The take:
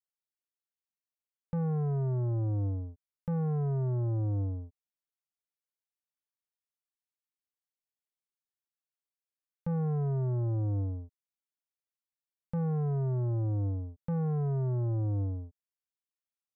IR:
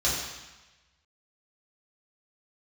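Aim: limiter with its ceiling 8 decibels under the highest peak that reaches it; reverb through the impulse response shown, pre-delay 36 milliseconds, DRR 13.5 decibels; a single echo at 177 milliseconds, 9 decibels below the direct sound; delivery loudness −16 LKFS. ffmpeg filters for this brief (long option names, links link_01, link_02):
-filter_complex "[0:a]alimiter=level_in=12.5dB:limit=-24dB:level=0:latency=1,volume=-12.5dB,aecho=1:1:177:0.355,asplit=2[link_01][link_02];[1:a]atrim=start_sample=2205,adelay=36[link_03];[link_02][link_03]afir=irnorm=-1:irlink=0,volume=-25dB[link_04];[link_01][link_04]amix=inputs=2:normalize=0,volume=23dB"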